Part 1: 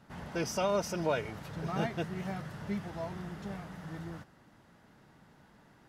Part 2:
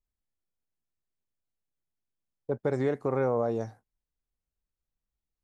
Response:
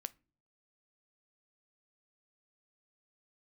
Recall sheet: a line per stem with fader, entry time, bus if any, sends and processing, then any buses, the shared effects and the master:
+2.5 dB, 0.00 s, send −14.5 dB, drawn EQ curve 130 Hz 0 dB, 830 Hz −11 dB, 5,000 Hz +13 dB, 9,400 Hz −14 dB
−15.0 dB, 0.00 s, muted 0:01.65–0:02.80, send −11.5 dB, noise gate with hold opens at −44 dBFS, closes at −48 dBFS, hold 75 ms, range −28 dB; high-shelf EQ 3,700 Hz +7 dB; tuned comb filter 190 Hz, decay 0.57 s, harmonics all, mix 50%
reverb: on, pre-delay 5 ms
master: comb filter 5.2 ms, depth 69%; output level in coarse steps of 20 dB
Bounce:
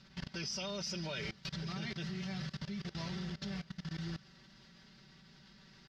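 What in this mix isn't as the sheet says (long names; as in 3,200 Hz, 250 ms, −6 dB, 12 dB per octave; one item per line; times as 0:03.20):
stem 2 −15.0 dB → −26.0 dB
reverb return −9.0 dB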